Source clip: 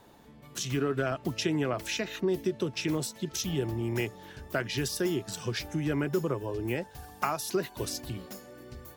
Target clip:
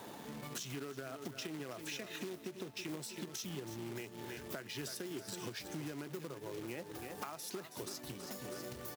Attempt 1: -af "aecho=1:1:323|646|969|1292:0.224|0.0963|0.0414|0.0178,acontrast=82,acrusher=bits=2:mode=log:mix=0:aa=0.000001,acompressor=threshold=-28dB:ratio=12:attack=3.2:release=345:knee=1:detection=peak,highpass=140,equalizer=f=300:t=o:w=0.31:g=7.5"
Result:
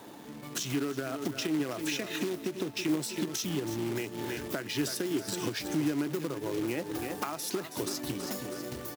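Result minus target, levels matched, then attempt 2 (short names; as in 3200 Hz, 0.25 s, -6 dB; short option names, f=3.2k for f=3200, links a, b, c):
compressor: peak gain reduction -9 dB; 250 Hz band +2.5 dB
-af "aecho=1:1:323|646|969|1292:0.224|0.0963|0.0414|0.0178,acontrast=82,acrusher=bits=2:mode=log:mix=0:aa=0.000001,acompressor=threshold=-38dB:ratio=12:attack=3.2:release=345:knee=1:detection=peak,highpass=140"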